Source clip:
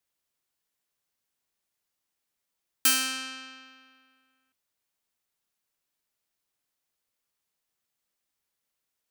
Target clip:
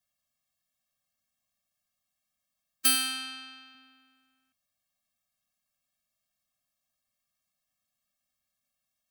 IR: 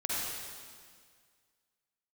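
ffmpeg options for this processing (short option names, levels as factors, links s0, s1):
-filter_complex "[0:a]asettb=1/sr,asplit=3[s0][s1][s2];[s0]atrim=end=2.954[s3];[s1]atrim=start=2.95:end=3.75,asetpts=PTS-STARTPTS,afade=t=in:d=0.004:c=qsin,afade=t=out:st=0.796:d=0.004:c=qsin,highpass=f=360:p=1[s4];[s2]atrim=start=3.746[s5];[s3][s4]acrossfade=d=0.004:c1=hsin:c2=qsin[s6];[s6][s5]acrossfade=d=0.004:c1=qsin:c2=hsin,afftfilt=real='re*eq(mod(floor(b*sr/1024/260),2),0)':imag='im*eq(mod(floor(b*sr/1024/260),2),0)':win_size=1024:overlap=0.75,volume=1.33"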